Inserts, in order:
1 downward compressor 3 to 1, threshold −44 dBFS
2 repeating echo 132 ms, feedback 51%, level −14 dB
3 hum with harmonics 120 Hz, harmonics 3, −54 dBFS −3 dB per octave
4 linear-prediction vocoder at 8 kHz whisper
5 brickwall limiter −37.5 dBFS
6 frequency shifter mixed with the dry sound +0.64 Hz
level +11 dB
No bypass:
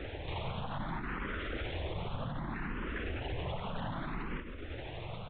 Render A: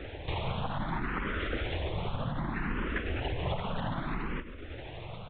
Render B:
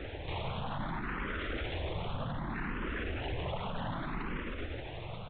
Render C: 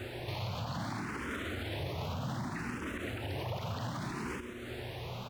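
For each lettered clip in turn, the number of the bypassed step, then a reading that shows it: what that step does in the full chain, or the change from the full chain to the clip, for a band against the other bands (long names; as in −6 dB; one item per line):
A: 5, average gain reduction 3.0 dB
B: 1, average gain reduction 11.5 dB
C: 4, 4 kHz band +1.5 dB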